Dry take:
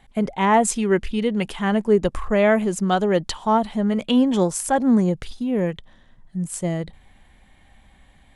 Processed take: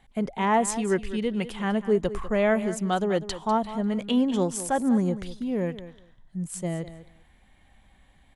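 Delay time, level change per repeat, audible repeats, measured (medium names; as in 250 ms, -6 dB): 198 ms, -16.0 dB, 2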